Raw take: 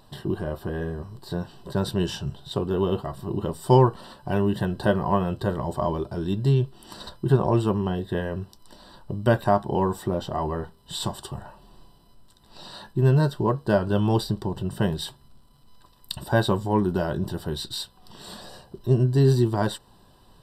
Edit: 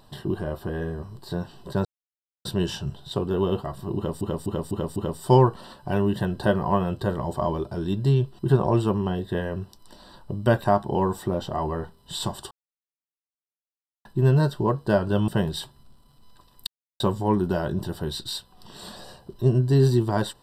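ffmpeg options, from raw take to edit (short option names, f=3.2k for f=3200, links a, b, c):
-filter_complex "[0:a]asplit=12[a][b][c][d][e][f][g][h][i][j][k][l];[a]atrim=end=1.85,asetpts=PTS-STARTPTS,afade=t=out:st=1.846:d=0.004:c=hsin,apad=pad_dur=0.6[m];[b]atrim=start=1.85:end=3.612,asetpts=PTS-STARTPTS,afade=t=in:d=0.004:c=hsin[n];[c]atrim=start=3.358:end=3.612[o];[d]atrim=start=3.358:end=3.612[p];[e]atrim=start=3.358:end=3.612[q];[f]atrim=start=3.358:end=6.792[r];[g]atrim=start=7.188:end=11.31,asetpts=PTS-STARTPTS,afade=t=out:st=4.118:d=0.004:c=hsin[s];[h]atrim=start=11.31:end=12.85,asetpts=PTS-STARTPTS,volume=0[t];[i]atrim=start=12.85:end=14.082,asetpts=PTS-STARTPTS,afade=t=in:d=0.004:c=hsin[u];[j]atrim=start=14.728:end=16.12,asetpts=PTS-STARTPTS,afade=t=out:st=1.388:d=0.004:c=hsin[v];[k]atrim=start=16.12:end=16.45,asetpts=PTS-STARTPTS,volume=0[w];[l]atrim=start=16.45,asetpts=PTS-STARTPTS,afade=t=in:d=0.004:c=hsin[x];[m][n]concat=n=2:v=0:a=1[y];[y][o]acrossfade=d=0.004:c1=hsin:c2=hsin[z];[z][p]acrossfade=d=0.004:c1=hsin:c2=hsin[aa];[aa][q]acrossfade=d=0.004:c1=hsin:c2=hsin[ab];[ab][r]acrossfade=d=0.004:c1=hsin:c2=hsin[ac];[s][t][u]concat=n=3:v=0:a=1[ad];[ac][ad]acrossfade=d=0.004:c1=hsin:c2=hsin[ae];[v][w][x]concat=n=3:v=0:a=1[af];[ae][af]acrossfade=d=0.004:c1=hsin:c2=hsin"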